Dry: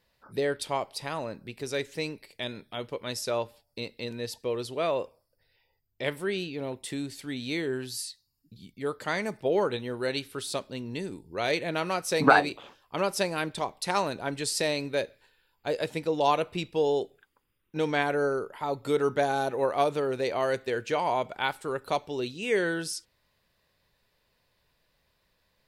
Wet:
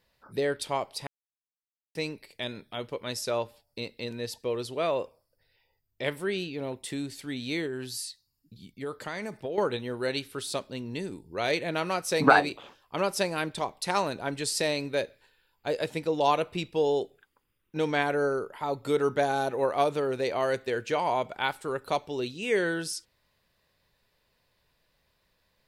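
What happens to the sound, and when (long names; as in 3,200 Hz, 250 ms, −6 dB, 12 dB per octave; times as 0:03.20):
0:01.07–0:01.95: silence
0:07.66–0:09.58: downward compressor, threshold −30 dBFS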